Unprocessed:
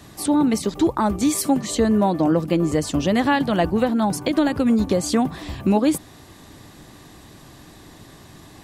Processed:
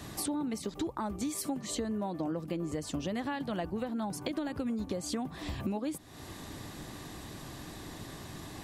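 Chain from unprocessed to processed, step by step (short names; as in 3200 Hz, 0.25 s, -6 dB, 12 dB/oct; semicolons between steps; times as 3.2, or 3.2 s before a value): compressor 5:1, threshold -34 dBFS, peak gain reduction 18 dB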